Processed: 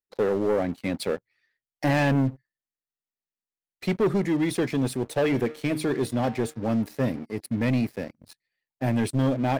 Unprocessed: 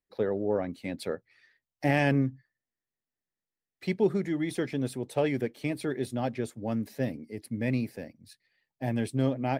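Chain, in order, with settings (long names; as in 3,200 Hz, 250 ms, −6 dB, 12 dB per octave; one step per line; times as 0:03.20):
0:05.00–0:07.26: hum removal 153.4 Hz, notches 38
leveller curve on the samples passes 3
level −3.5 dB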